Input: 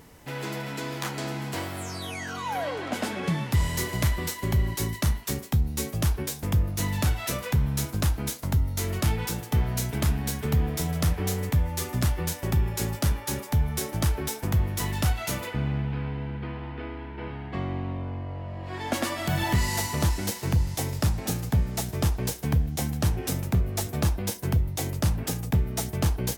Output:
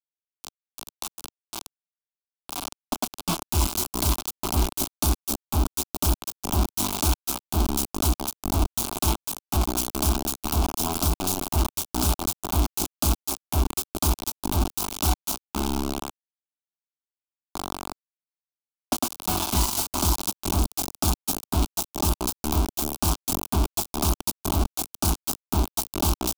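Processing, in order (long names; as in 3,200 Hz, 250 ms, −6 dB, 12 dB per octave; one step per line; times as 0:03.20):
hum removal 109.6 Hz, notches 31
bit reduction 4 bits
phaser with its sweep stopped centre 500 Hz, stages 6
level +3.5 dB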